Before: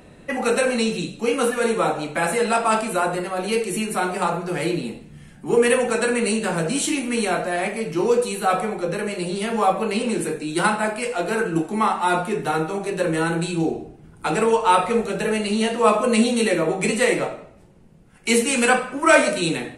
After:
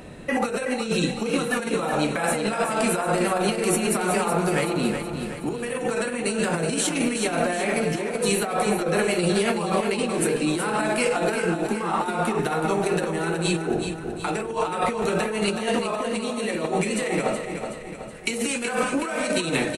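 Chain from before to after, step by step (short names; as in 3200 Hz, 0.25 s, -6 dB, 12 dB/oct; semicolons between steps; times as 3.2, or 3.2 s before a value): limiter -14 dBFS, peak gain reduction 11 dB; negative-ratio compressor -26 dBFS, ratio -0.5; on a send: feedback echo 0.373 s, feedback 51%, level -7.5 dB; on the sum: gain +2 dB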